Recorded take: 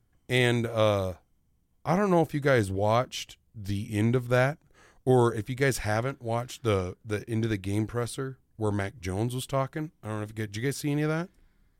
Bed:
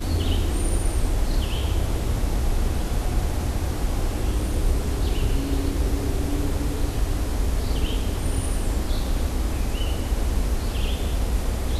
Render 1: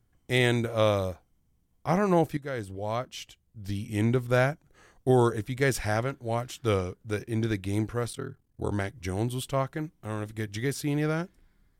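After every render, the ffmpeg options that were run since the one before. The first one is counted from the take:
-filter_complex "[0:a]asettb=1/sr,asplit=3[s0][s1][s2];[s0]atrim=end=8.114[s3];[s1]atrim=start=8.11:end=8.73,asetpts=PTS-STARTPTS,afade=t=in:d=0.004:c=qsin,afade=t=out:st=0.616:d=0.004:c=qsin,aeval=exprs='val(0)*sin(2*PI*20*n/s)':c=same[s4];[s2]atrim=start=8.726[s5];[s3][s4]acrossfade=d=0.004:c1=hsin:c2=qsin[s6];[s6][s5]acrossfade=d=0.004:c1=qsin:c2=hsin,asplit=2[s7][s8];[s7]atrim=end=2.37,asetpts=PTS-STARTPTS,afade=t=out:st=2.366:d=0.004:c=hsin:silence=0.211349[s9];[s8]atrim=start=2.37,asetpts=PTS-STARTPTS,afade=t=in:d=1.75:silence=0.211349[s10];[s9][s10]concat=n=2:v=0:a=1"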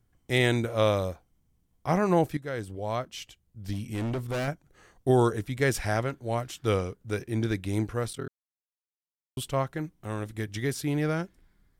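-filter_complex "[0:a]asettb=1/sr,asplit=3[s0][s1][s2];[s0]atrim=end=3.734[s3];[s1]atrim=start=3.73:end=4.48,asetpts=PTS-STARTPTS,afade=t=in:d=0.004:c=qsin,afade=t=out:st=0.746:d=0.004:c=qsin,asoftclip=type=hard:threshold=0.0422[s4];[s2]atrim=start=4.476[s5];[s3][s4]acrossfade=d=0.004:c1=hsin:c2=qsin[s6];[s6][s5]acrossfade=d=0.004:c1=qsin:c2=hsin,asplit=3[s7][s8][s9];[s7]atrim=end=8.28,asetpts=PTS-STARTPTS,afade=t=out:st=8.276:d=0.004:c=hsin[s10];[s8]atrim=start=8.28:end=9.37,asetpts=PTS-STARTPTS,volume=0[s11];[s9]atrim=start=9.37,asetpts=PTS-STARTPTS,afade=t=in:d=0.004:c=hsin[s12];[s10][s11][s12]concat=n=3:v=0:a=1"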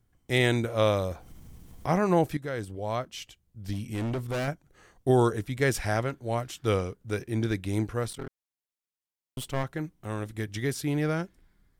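-filter_complex "[0:a]asettb=1/sr,asplit=3[s0][s1][s2];[s0]atrim=end=1.114[s3];[s1]atrim=start=1.11:end=2.65,asetpts=PTS-STARTPTS,afade=t=in:d=0.004:c=qsin,afade=t=out:st=1.536:d=0.004:c=qsin,acompressor=mode=upward:threshold=0.0398:ratio=2.5:attack=3.2:release=140:knee=2.83:detection=peak[s4];[s2]atrim=start=2.646[s5];[s3][s4]acrossfade=d=0.004:c1=hsin:c2=qsin[s6];[s6][s5]acrossfade=d=0.004:c1=qsin:c2=hsin,asettb=1/sr,asplit=3[s7][s8][s9];[s7]atrim=end=8.104[s10];[s8]atrim=start=8.1:end=9.64,asetpts=PTS-STARTPTS,afade=t=in:d=0.004:c=qsin,afade=t=out:st=1.536:d=0.004:c=qsin,aeval=exprs='clip(val(0),-1,0.0112)':c=same[s11];[s9]atrim=start=9.636[s12];[s10][s11]acrossfade=d=0.004:c1=hsin:c2=qsin[s13];[s13][s12]acrossfade=d=0.004:c1=qsin:c2=hsin"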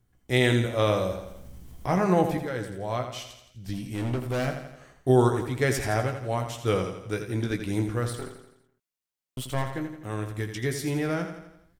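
-filter_complex "[0:a]asplit=2[s0][s1];[s1]adelay=16,volume=0.422[s2];[s0][s2]amix=inputs=2:normalize=0,aecho=1:1:84|168|252|336|420|504:0.376|0.195|0.102|0.0528|0.0275|0.0143"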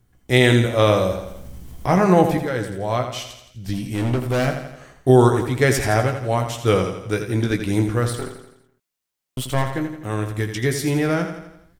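-af "volume=2.37,alimiter=limit=0.794:level=0:latency=1"

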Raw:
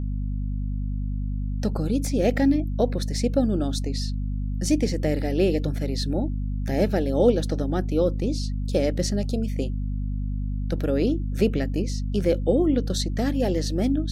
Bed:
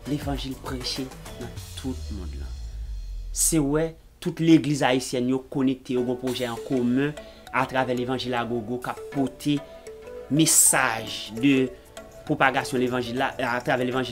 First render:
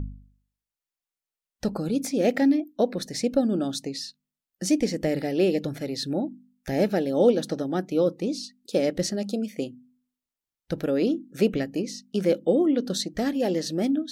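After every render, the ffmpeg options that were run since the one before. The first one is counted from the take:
-af "bandreject=f=50:t=h:w=4,bandreject=f=100:t=h:w=4,bandreject=f=150:t=h:w=4,bandreject=f=200:t=h:w=4,bandreject=f=250:t=h:w=4"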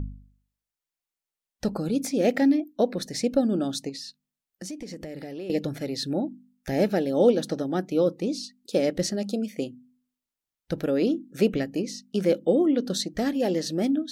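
-filter_complex "[0:a]asettb=1/sr,asplit=3[s0][s1][s2];[s0]atrim=end=3.894[s3];[s1]atrim=start=3.89:end=5.5,asetpts=PTS-STARTPTS,afade=t=in:d=0.004:c=qsin,afade=t=out:st=1.606:d=0.004:c=qsin,acompressor=threshold=0.02:ratio=6:attack=3.2:release=140:knee=1:detection=peak[s4];[s2]atrim=start=5.496[s5];[s3][s4]acrossfade=d=0.004:c1=hsin:c2=qsin[s6];[s6][s5]acrossfade=d=0.004:c1=qsin:c2=hsin"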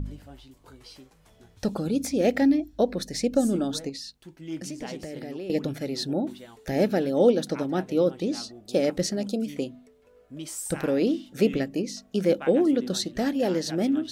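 -filter_complex "[1:a]volume=0.119[s0];[0:a][s0]amix=inputs=2:normalize=0"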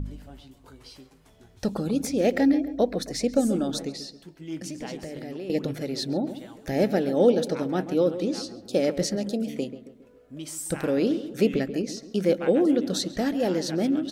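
-filter_complex "[0:a]asplit=2[s0][s1];[s1]adelay=136,lowpass=f=1900:p=1,volume=0.251,asplit=2[s2][s3];[s3]adelay=136,lowpass=f=1900:p=1,volume=0.48,asplit=2[s4][s5];[s5]adelay=136,lowpass=f=1900:p=1,volume=0.48,asplit=2[s6][s7];[s7]adelay=136,lowpass=f=1900:p=1,volume=0.48,asplit=2[s8][s9];[s9]adelay=136,lowpass=f=1900:p=1,volume=0.48[s10];[s0][s2][s4][s6][s8][s10]amix=inputs=6:normalize=0"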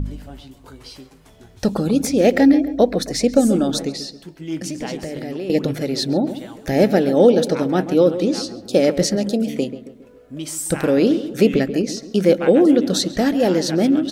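-af "volume=2.51,alimiter=limit=0.708:level=0:latency=1"

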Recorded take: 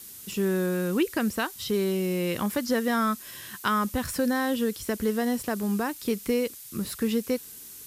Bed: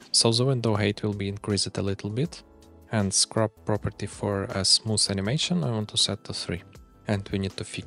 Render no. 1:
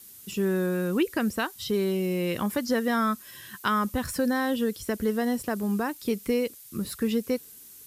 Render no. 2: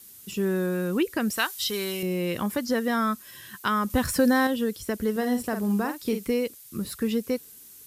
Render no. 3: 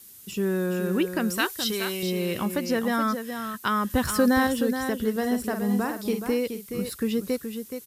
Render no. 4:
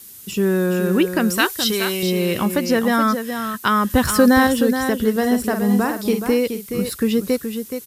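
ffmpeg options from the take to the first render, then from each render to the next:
-af "afftdn=nr=6:nf=-44"
-filter_complex "[0:a]asettb=1/sr,asplit=3[s0][s1][s2];[s0]atrim=end=1.304[s3];[s1]atrim=start=1.3:end=2.03,asetpts=PTS-STARTPTS,afade=t=in:d=0.004:c=qsin,afade=t=out:st=0.726:d=0.004:c=qsin,tiltshelf=f=820:g=-8.5[s4];[s2]atrim=start=2.026[s5];[s3][s4]acrossfade=d=0.004:c1=hsin:c2=qsin[s6];[s6][s5]acrossfade=d=0.004:c1=qsin:c2=hsin,asettb=1/sr,asplit=3[s7][s8][s9];[s7]atrim=end=5.114[s10];[s8]atrim=start=5.11:end=6.25,asetpts=PTS-STARTPTS,afade=t=in:d=0.004:c=qsin,afade=t=out:st=1.136:d=0.004:c=qsin,asplit=2[s11][s12];[s12]adelay=49,volume=0.422[s13];[s11][s13]amix=inputs=2:normalize=0,atrim=end_sample=50274[s14];[s9]atrim=start=6.246[s15];[s10][s14]acrossfade=d=0.004:c1=hsin:c2=qsin[s16];[s16][s15]acrossfade=d=0.004:c1=qsin:c2=hsin,asplit=3[s17][s18][s19];[s17]atrim=end=3.902[s20];[s18]atrim=start=3.898:end=4.472,asetpts=PTS-STARTPTS,volume=1.78[s21];[s19]atrim=start=4.468[s22];[s20][s21]acrossfade=d=0.004:c1=hsin:c2=hsin[s23];[s23][s22]acrossfade=d=0.004:c1=hsin:c2=hsin"
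-af "aecho=1:1:423:0.398"
-af "volume=2.37"

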